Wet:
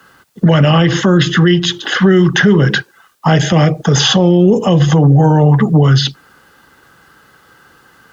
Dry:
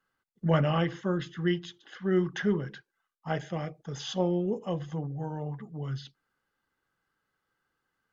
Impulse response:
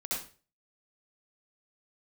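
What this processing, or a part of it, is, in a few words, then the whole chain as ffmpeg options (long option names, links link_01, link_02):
mastering chain: -filter_complex "[0:a]highpass=46,equalizer=frequency=2200:width_type=o:width=0.22:gain=-4,acrossover=split=120|340|2300[link_01][link_02][link_03][link_04];[link_01]acompressor=threshold=-46dB:ratio=4[link_05];[link_02]acompressor=threshold=-39dB:ratio=4[link_06];[link_03]acompressor=threshold=-42dB:ratio=4[link_07];[link_04]acompressor=threshold=-46dB:ratio=4[link_08];[link_05][link_06][link_07][link_08]amix=inputs=4:normalize=0,acompressor=threshold=-42dB:ratio=1.5,alimiter=level_in=35dB:limit=-1dB:release=50:level=0:latency=1,volume=-1dB"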